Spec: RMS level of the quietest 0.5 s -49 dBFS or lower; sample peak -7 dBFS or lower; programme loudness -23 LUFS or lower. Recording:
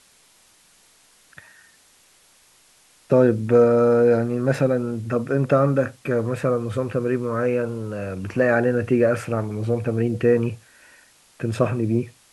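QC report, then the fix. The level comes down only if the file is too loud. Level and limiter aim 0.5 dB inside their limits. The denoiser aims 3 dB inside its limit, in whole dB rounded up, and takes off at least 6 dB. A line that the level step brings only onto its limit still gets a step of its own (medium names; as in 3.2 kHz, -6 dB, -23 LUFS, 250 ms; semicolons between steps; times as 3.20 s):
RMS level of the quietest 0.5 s -56 dBFS: pass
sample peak -4.5 dBFS: fail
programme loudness -21.5 LUFS: fail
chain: trim -2 dB; peak limiter -7.5 dBFS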